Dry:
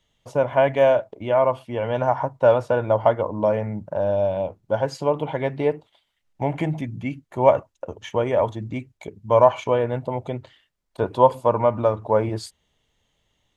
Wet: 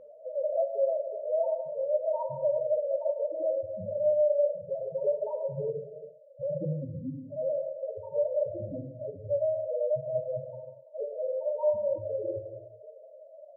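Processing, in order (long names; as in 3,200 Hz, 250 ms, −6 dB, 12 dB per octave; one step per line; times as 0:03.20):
compressor on every frequency bin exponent 0.4
0:05.44–0:07.48: Butterworth low-pass 650 Hz 48 dB per octave
downward compressor 2 to 1, threshold −17 dBFS, peak gain reduction 6.5 dB
spectral peaks only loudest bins 1
reverb whose tail is shaped and stops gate 420 ms falling, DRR 3.5 dB
amplitude modulation by smooth noise, depth 55%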